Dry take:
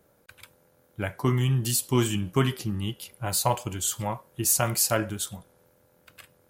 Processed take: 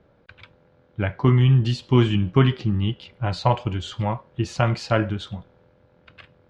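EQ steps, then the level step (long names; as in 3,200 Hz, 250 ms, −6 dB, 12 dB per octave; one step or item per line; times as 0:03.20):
low-pass filter 3,900 Hz 24 dB per octave
low-shelf EQ 200 Hz +6.5 dB
+3.5 dB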